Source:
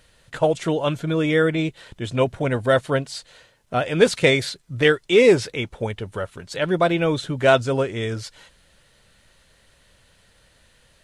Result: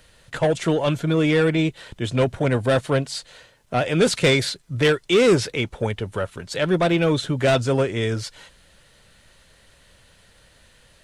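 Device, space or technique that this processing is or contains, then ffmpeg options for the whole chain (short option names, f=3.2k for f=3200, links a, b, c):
one-band saturation: -filter_complex "[0:a]acrossover=split=270|3500[a][b][c];[b]asoftclip=type=tanh:threshold=-18.5dB[d];[a][d][c]amix=inputs=3:normalize=0,volume=3dB"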